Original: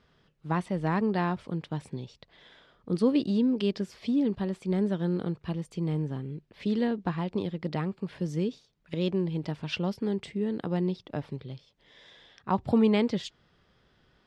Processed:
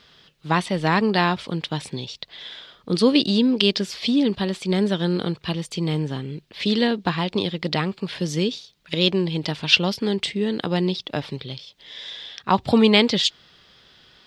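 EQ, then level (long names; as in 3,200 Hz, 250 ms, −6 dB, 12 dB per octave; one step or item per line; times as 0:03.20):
spectral tilt +1.5 dB per octave
parametric band 3,800 Hz +9.5 dB 1.3 octaves
+9.0 dB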